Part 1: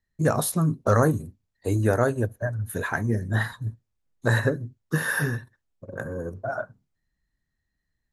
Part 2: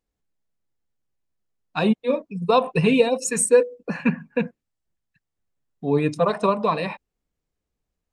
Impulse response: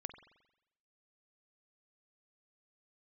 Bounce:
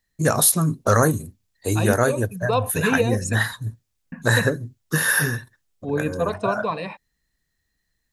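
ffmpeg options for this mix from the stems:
-filter_complex "[0:a]highshelf=f=2100:g=11,volume=1.19[s0];[1:a]volume=0.631,asplit=3[s1][s2][s3];[s1]atrim=end=3.35,asetpts=PTS-STARTPTS,afade=t=out:st=3.346:d=0.004:c=hsin[s4];[s2]atrim=start=3.35:end=4.12,asetpts=PTS-STARTPTS,volume=0[s5];[s3]atrim=start=4.12,asetpts=PTS-STARTPTS,afade=t=in:d=0.004:c=hsin[s6];[s4][s5][s6]concat=n=3:v=0:a=1[s7];[s0][s7]amix=inputs=2:normalize=0"

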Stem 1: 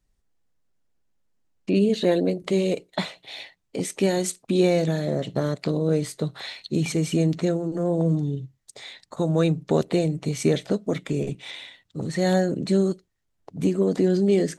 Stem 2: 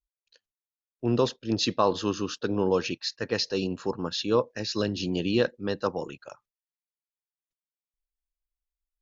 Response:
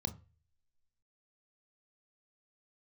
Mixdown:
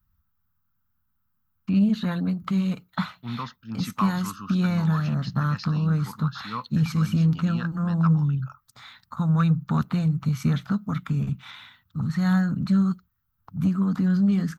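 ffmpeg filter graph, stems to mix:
-filter_complex "[0:a]equalizer=f=76:t=o:w=1.3:g=12.5,volume=1.12[s0];[1:a]adelay=2200,volume=0.631[s1];[s0][s1]amix=inputs=2:normalize=0,firequalizer=gain_entry='entry(120,0);entry(230,-4);entry(340,-28);entry(560,-29);entry(850,-14);entry(1300,-1);entry(1900,-19);entry(5300,-17);entry(9300,-23);entry(14000,14)':delay=0.05:min_phase=1,asplit=2[s2][s3];[s3]highpass=f=720:p=1,volume=8.91,asoftclip=type=tanh:threshold=0.447[s4];[s2][s4]amix=inputs=2:normalize=0,lowpass=f=3400:p=1,volume=0.501"

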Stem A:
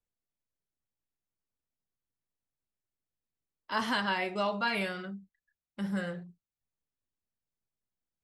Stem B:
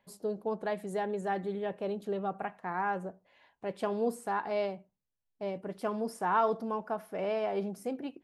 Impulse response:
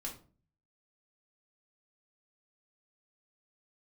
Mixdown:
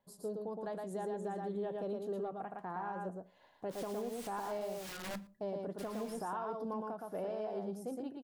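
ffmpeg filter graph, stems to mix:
-filter_complex "[0:a]equalizer=f=1400:t=o:w=2.8:g=-3,bandreject=f=60:t=h:w=6,bandreject=f=120:t=h:w=6,bandreject=f=180:t=h:w=6,bandreject=f=240:t=h:w=6,bandreject=f=300:t=h:w=6,bandreject=f=360:t=h:w=6,aeval=exprs='(mod(75*val(0)+1,2)-1)/75':c=same,volume=0.447,asplit=3[s0][s1][s2];[s1]volume=0.335[s3];[s2]volume=0.0631[s4];[1:a]equalizer=f=2300:w=1.6:g=-12,alimiter=level_in=1.5:limit=0.0631:level=0:latency=1:release=203,volume=0.668,volume=0.596,asplit=3[s5][s6][s7];[s6]volume=0.668[s8];[s7]apad=whole_len=363018[s9];[s0][s9]sidechaincompress=threshold=0.00158:ratio=8:attack=16:release=169[s10];[2:a]atrim=start_sample=2205[s11];[s3][s11]afir=irnorm=-1:irlink=0[s12];[s4][s8]amix=inputs=2:normalize=0,aecho=0:1:115:1[s13];[s10][s5][s12][s13]amix=inputs=4:normalize=0,dynaudnorm=f=320:g=9:m=1.88,asoftclip=type=tanh:threshold=0.106,alimiter=level_in=2.24:limit=0.0631:level=0:latency=1:release=471,volume=0.447"

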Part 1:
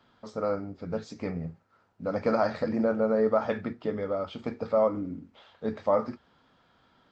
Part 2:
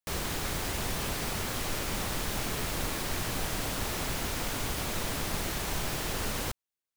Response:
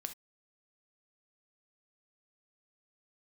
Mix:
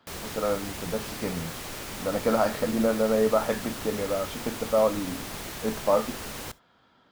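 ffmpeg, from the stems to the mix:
-filter_complex "[0:a]volume=1,asplit=2[s0][s1];[s1]volume=0.355[s2];[1:a]volume=0.531,asplit=2[s3][s4];[s4]volume=0.422[s5];[2:a]atrim=start_sample=2205[s6];[s2][s5]amix=inputs=2:normalize=0[s7];[s7][s6]afir=irnorm=-1:irlink=0[s8];[s0][s3][s8]amix=inputs=3:normalize=0,lowshelf=f=69:g=-8.5"

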